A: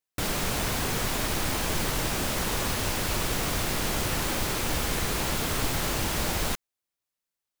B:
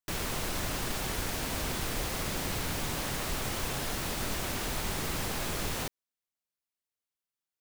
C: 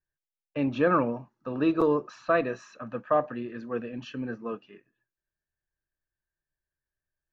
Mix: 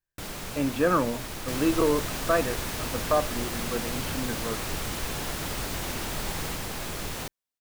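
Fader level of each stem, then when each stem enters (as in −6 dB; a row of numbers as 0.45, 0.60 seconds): −8.5, −0.5, 0.0 decibels; 0.00, 1.40, 0.00 seconds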